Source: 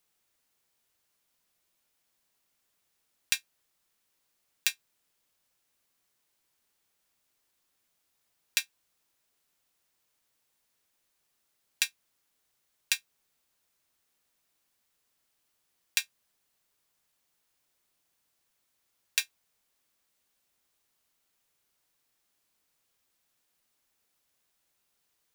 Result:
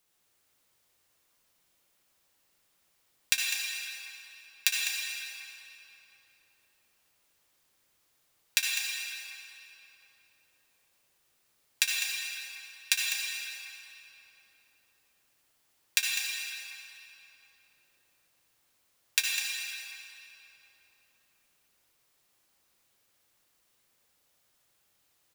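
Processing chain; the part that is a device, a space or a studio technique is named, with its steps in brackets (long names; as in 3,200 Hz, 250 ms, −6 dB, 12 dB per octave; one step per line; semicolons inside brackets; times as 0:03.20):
cave (single-tap delay 202 ms −9 dB; convolution reverb RT60 3.3 s, pre-delay 57 ms, DRR −1.5 dB)
level +1.5 dB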